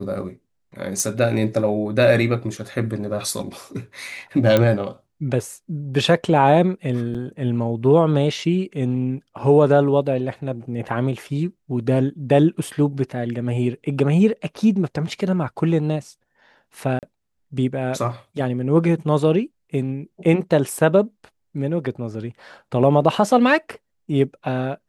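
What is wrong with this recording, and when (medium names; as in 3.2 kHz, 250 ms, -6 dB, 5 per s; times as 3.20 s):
1.00 s: pop
4.57 s: pop -5 dBFS
7.14–7.15 s: dropout 6.3 ms
16.99–17.03 s: dropout 38 ms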